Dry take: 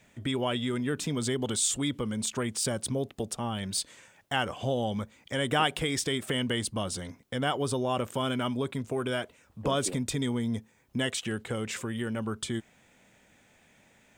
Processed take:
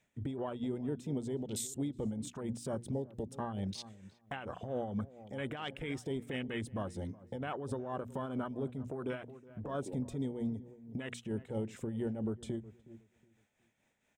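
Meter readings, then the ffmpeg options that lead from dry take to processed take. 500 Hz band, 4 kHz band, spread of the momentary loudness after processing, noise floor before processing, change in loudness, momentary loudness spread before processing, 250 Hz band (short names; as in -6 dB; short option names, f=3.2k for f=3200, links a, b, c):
-7.5 dB, -17.5 dB, 7 LU, -63 dBFS, -8.5 dB, 8 LU, -6.0 dB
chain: -filter_complex "[0:a]afwtdn=0.02,bandreject=f=60:t=h:w=6,bandreject=f=120:t=h:w=6,bandreject=f=180:t=h:w=6,bandreject=f=240:t=h:w=6,acompressor=threshold=-33dB:ratio=2.5,alimiter=level_in=6dB:limit=-24dB:level=0:latency=1:release=47,volume=-6dB,bandreject=f=4.6k:w=15,asplit=2[a][b];[b]adelay=367,lowpass=f=850:p=1,volume=-15dB,asplit=2[c][d];[d]adelay=367,lowpass=f=850:p=1,volume=0.25,asplit=2[e][f];[f]adelay=367,lowpass=f=850:p=1,volume=0.25[g];[a][c][e][g]amix=inputs=4:normalize=0,tremolo=f=4.4:d=0.52,volume=2.5dB"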